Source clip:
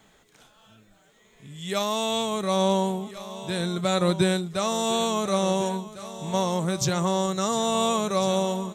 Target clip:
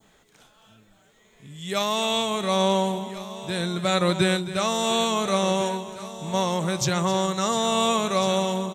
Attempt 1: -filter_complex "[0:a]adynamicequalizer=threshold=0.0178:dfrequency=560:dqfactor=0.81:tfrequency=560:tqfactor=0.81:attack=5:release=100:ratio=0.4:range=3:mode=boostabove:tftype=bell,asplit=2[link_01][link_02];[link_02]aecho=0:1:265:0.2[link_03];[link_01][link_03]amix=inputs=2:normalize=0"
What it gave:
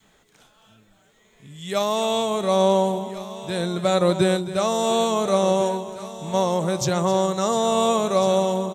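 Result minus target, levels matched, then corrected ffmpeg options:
2,000 Hz band −6.0 dB
-filter_complex "[0:a]adynamicequalizer=threshold=0.0178:dfrequency=2200:dqfactor=0.81:tfrequency=2200:tqfactor=0.81:attack=5:release=100:ratio=0.4:range=3:mode=boostabove:tftype=bell,asplit=2[link_01][link_02];[link_02]aecho=0:1:265:0.2[link_03];[link_01][link_03]amix=inputs=2:normalize=0"

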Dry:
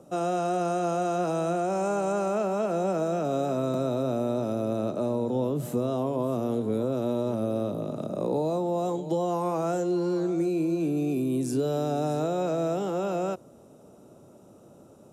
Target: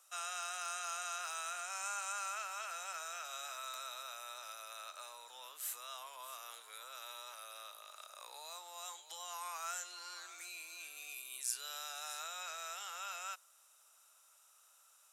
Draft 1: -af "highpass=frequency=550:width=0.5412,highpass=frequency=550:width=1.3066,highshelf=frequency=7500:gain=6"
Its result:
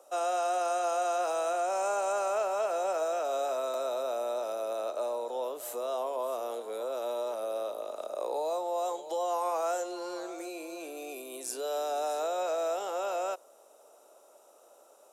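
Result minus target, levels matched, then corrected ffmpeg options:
500 Hz band +16.0 dB
-af "highpass=frequency=1400:width=0.5412,highpass=frequency=1400:width=1.3066,highshelf=frequency=7500:gain=6"

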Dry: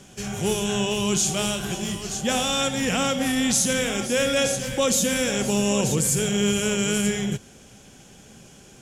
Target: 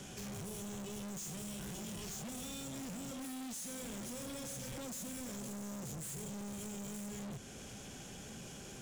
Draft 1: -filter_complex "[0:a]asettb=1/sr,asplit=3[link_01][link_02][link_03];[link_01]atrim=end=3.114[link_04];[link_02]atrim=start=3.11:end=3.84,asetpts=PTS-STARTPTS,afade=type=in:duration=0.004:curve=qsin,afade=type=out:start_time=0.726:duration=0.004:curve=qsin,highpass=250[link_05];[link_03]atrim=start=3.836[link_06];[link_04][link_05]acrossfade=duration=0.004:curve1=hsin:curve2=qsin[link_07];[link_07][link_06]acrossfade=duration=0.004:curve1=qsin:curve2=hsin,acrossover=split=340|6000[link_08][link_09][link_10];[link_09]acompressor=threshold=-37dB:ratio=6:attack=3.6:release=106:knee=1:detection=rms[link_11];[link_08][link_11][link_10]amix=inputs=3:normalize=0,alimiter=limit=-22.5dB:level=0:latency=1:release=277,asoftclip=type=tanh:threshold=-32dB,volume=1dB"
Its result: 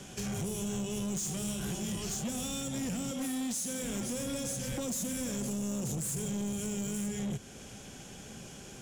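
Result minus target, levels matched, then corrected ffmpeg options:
soft clipping: distortion −7 dB
-filter_complex "[0:a]asettb=1/sr,asplit=3[link_01][link_02][link_03];[link_01]atrim=end=3.114[link_04];[link_02]atrim=start=3.11:end=3.84,asetpts=PTS-STARTPTS,afade=type=in:duration=0.004:curve=qsin,afade=type=out:start_time=0.726:duration=0.004:curve=qsin,highpass=250[link_05];[link_03]atrim=start=3.836[link_06];[link_04][link_05]acrossfade=duration=0.004:curve1=hsin:curve2=qsin[link_07];[link_07][link_06]acrossfade=duration=0.004:curve1=qsin:curve2=hsin,acrossover=split=340|6000[link_08][link_09][link_10];[link_09]acompressor=threshold=-37dB:ratio=6:attack=3.6:release=106:knee=1:detection=rms[link_11];[link_08][link_11][link_10]amix=inputs=3:normalize=0,alimiter=limit=-22.5dB:level=0:latency=1:release=277,asoftclip=type=tanh:threshold=-44dB,volume=1dB"

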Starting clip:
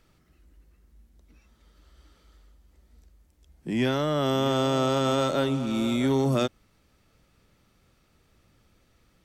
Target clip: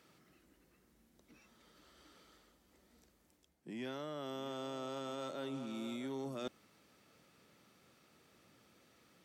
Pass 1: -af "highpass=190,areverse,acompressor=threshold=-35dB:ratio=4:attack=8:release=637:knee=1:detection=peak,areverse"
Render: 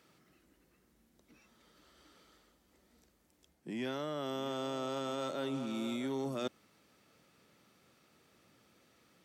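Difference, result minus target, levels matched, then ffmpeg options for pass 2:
downward compressor: peak gain reduction −5.5 dB
-af "highpass=190,areverse,acompressor=threshold=-42dB:ratio=4:attack=8:release=637:knee=1:detection=peak,areverse"

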